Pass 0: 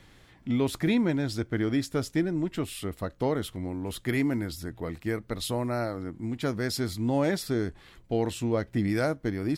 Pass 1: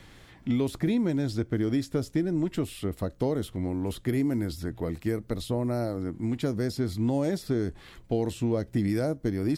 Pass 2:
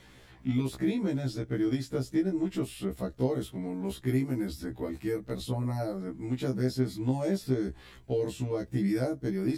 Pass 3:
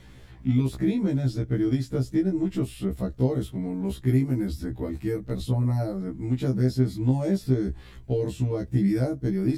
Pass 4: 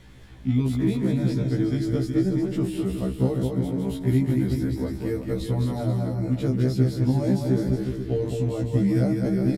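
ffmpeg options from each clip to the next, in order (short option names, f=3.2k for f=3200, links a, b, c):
-filter_complex "[0:a]acrossover=split=680|4600[a][b][c];[a]acompressor=threshold=-27dB:ratio=4[d];[b]acompressor=threshold=-49dB:ratio=4[e];[c]acompressor=threshold=-51dB:ratio=4[f];[d][e][f]amix=inputs=3:normalize=0,volume=4dB"
-af "afftfilt=real='re*1.73*eq(mod(b,3),0)':imag='im*1.73*eq(mod(b,3),0)':win_size=2048:overlap=0.75"
-af "lowshelf=f=210:g=11.5"
-af "aecho=1:1:210|367.5|485.6|574.2|640.7:0.631|0.398|0.251|0.158|0.1"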